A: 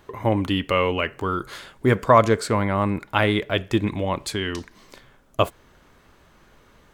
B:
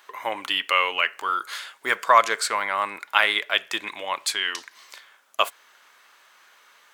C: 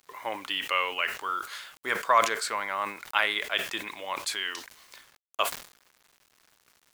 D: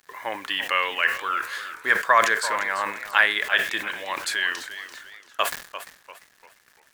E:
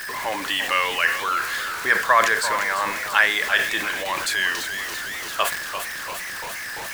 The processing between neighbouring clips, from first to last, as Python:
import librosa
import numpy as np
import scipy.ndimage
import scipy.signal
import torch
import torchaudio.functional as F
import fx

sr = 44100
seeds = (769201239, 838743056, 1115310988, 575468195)

y1 = scipy.signal.sosfilt(scipy.signal.butter(2, 1200.0, 'highpass', fs=sr, output='sos'), x)
y1 = y1 * 10.0 ** (5.5 / 20.0)
y2 = fx.low_shelf(y1, sr, hz=360.0, db=4.5)
y2 = fx.quant_dither(y2, sr, seeds[0], bits=8, dither='none')
y2 = fx.sustainer(y2, sr, db_per_s=120.0)
y2 = y2 * 10.0 ** (-6.5 / 20.0)
y3 = fx.peak_eq(y2, sr, hz=1700.0, db=11.5, octaves=0.28)
y3 = fx.echo_warbled(y3, sr, ms=344, feedback_pct=37, rate_hz=2.8, cents=140, wet_db=-12.5)
y3 = y3 * 10.0 ** (2.5 / 20.0)
y4 = y3 + 0.5 * 10.0 ** (-26.0 / 20.0) * np.sign(y3)